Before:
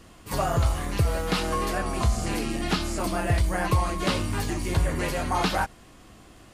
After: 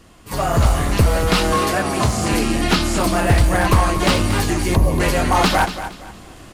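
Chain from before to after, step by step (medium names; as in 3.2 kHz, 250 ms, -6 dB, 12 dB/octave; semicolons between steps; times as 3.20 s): one-sided wavefolder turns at -19.5 dBFS; 1.53–2.33 s: high-pass 77 Hz 24 dB/octave; 4.75–5.00 s: time-frequency box 1.2–9.9 kHz -25 dB; feedback delay 233 ms, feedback 28%, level -11.5 dB; level rider gain up to 8 dB; trim +2 dB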